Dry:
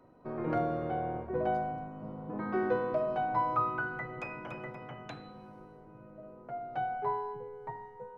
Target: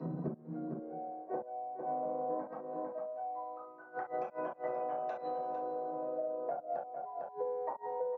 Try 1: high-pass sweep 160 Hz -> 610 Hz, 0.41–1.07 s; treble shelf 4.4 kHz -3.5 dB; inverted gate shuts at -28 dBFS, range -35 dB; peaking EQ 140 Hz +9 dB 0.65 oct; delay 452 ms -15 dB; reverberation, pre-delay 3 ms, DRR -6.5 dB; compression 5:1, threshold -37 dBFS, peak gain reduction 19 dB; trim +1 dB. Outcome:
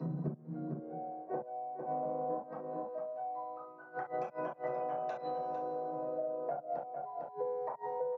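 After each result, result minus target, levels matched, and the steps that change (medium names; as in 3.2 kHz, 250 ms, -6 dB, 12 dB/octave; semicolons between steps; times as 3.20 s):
4 kHz band +4.0 dB; 125 Hz band +3.5 dB
change: treble shelf 4.4 kHz -14.5 dB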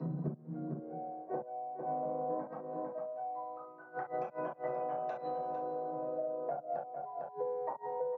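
125 Hz band +3.5 dB
remove: peaking EQ 140 Hz +9 dB 0.65 oct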